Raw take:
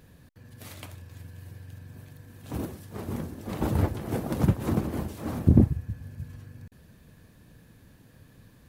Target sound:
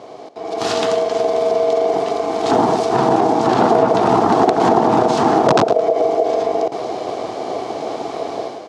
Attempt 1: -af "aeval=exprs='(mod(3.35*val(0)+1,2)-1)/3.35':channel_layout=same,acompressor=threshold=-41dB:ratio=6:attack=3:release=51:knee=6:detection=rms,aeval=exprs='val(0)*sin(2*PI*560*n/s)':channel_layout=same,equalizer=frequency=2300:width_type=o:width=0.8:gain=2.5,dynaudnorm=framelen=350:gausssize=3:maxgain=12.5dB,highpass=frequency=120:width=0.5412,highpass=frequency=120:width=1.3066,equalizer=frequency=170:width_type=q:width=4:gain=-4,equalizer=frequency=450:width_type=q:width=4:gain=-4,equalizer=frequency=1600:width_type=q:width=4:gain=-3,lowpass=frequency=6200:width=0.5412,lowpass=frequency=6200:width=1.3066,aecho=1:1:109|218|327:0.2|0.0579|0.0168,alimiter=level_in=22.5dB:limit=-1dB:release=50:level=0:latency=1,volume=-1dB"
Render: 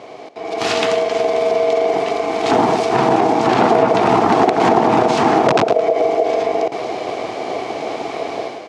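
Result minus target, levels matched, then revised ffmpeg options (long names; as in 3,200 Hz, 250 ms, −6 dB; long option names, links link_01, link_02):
2,000 Hz band +4.5 dB
-af "aeval=exprs='(mod(3.35*val(0)+1,2)-1)/3.35':channel_layout=same,acompressor=threshold=-41dB:ratio=6:attack=3:release=51:knee=6:detection=rms,aeval=exprs='val(0)*sin(2*PI*560*n/s)':channel_layout=same,equalizer=frequency=2300:width_type=o:width=0.8:gain=-6.5,dynaudnorm=framelen=350:gausssize=3:maxgain=12.5dB,highpass=frequency=120:width=0.5412,highpass=frequency=120:width=1.3066,equalizer=frequency=170:width_type=q:width=4:gain=-4,equalizer=frequency=450:width_type=q:width=4:gain=-4,equalizer=frequency=1600:width_type=q:width=4:gain=-3,lowpass=frequency=6200:width=0.5412,lowpass=frequency=6200:width=1.3066,aecho=1:1:109|218|327:0.2|0.0579|0.0168,alimiter=level_in=22.5dB:limit=-1dB:release=50:level=0:latency=1,volume=-1dB"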